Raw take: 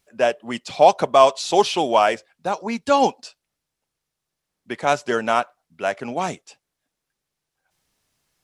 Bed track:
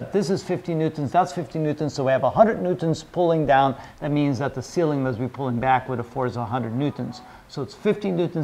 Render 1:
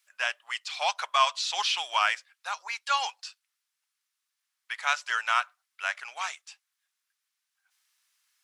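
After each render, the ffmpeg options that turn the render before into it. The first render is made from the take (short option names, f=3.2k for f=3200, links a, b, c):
-filter_complex "[0:a]highpass=f=1.2k:w=0.5412,highpass=f=1.2k:w=1.3066,acrossover=split=6400[a][b];[b]acompressor=threshold=-50dB:ratio=4:attack=1:release=60[c];[a][c]amix=inputs=2:normalize=0"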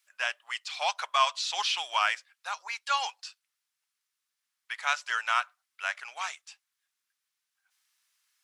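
-af "volume=-1.5dB"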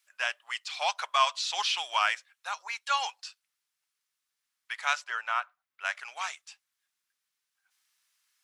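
-filter_complex "[0:a]asettb=1/sr,asplit=3[a][b][c];[a]atrim=end=2.134[d];[b]atrim=start=2.13:end=3.14,asetpts=PTS-STARTPTS,afade=t=in:d=0.004:c=qsin,afade=t=out:st=1.006:d=0.004:c=qsin,bandreject=f=4.8k:w=12[e];[c]atrim=start=3.136[f];[d][e]acrossfade=d=0.004:c1=hsin:c2=qsin[g];[g][f]acrossfade=d=0.004:c1=qsin:c2=hsin,asettb=1/sr,asplit=3[h][i][j];[h]atrim=end=5.044[k];[i]atrim=start=5.04:end=5.85,asetpts=PTS-STARTPTS,afade=t=in:d=0.004:c=qsin,afade=t=out:st=0.806:d=0.004:c=qsin,equalizer=f=7.6k:t=o:w=2.7:g=-13.5[l];[j]atrim=start=5.846[m];[k][l]acrossfade=d=0.004:c1=hsin:c2=qsin[n];[n][m]acrossfade=d=0.004:c1=qsin:c2=hsin"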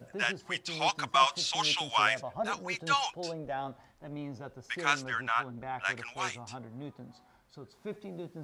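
-filter_complex "[1:a]volume=-19dB[a];[0:a][a]amix=inputs=2:normalize=0"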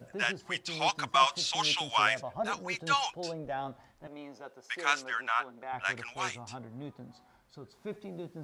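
-filter_complex "[0:a]asettb=1/sr,asplit=3[a][b][c];[a]atrim=end=4.074[d];[b]atrim=start=4.07:end=5.73,asetpts=PTS-STARTPTS,afade=t=in:d=0.004:c=qsin,afade=t=out:st=1.656:d=0.004:c=qsin,highpass=390[e];[c]atrim=start=5.726[f];[d][e]acrossfade=d=0.004:c1=hsin:c2=qsin[g];[g][f]acrossfade=d=0.004:c1=qsin:c2=hsin"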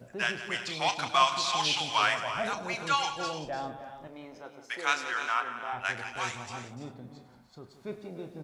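-filter_complex "[0:a]asplit=2[a][b];[b]adelay=33,volume=-11dB[c];[a][c]amix=inputs=2:normalize=0,aecho=1:1:103|175|296|331|387:0.168|0.224|0.211|0.237|0.112"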